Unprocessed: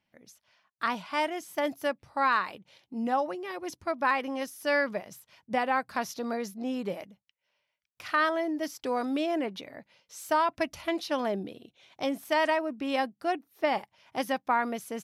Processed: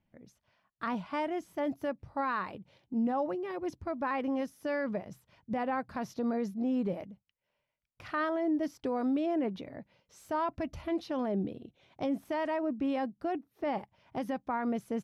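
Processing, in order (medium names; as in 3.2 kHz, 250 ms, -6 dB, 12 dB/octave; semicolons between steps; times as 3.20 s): tilt EQ -3.5 dB/octave; peak limiter -21 dBFS, peak gain reduction 9 dB; trim -3 dB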